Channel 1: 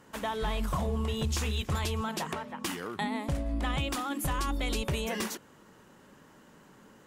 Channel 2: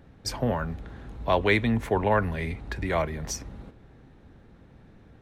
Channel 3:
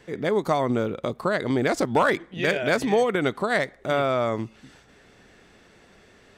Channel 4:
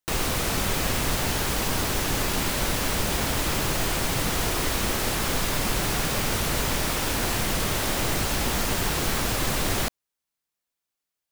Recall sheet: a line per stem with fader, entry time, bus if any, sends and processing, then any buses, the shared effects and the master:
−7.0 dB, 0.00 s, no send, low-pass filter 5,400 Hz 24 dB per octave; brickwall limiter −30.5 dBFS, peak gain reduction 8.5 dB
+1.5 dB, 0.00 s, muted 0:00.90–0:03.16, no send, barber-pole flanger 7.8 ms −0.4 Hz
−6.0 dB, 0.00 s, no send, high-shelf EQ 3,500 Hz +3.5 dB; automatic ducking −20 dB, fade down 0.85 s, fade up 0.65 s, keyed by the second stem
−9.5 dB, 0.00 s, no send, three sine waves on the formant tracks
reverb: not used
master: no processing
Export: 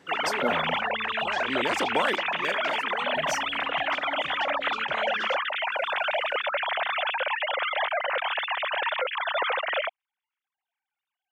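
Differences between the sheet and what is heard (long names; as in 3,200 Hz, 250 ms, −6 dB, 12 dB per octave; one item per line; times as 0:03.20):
stem 1: missing brickwall limiter −30.5 dBFS, peak gain reduction 8.5 dB
stem 4 −9.5 dB → −3.0 dB
master: extra high-pass filter 230 Hz 12 dB per octave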